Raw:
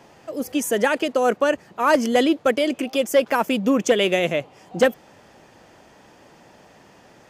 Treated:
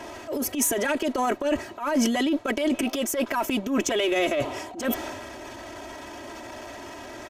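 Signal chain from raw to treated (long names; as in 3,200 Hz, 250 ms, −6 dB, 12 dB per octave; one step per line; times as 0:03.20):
parametric band 190 Hz −9 dB 0.38 octaves
notch filter 4,800 Hz, Q 18
comb filter 3.1 ms, depth 93%
reversed playback
downward compressor 6 to 1, threshold −28 dBFS, peak gain reduction 18.5 dB
reversed playback
transient designer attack −12 dB, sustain +6 dB
in parallel at −6 dB: asymmetric clip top −37.5 dBFS
on the sum: level +5.5 dB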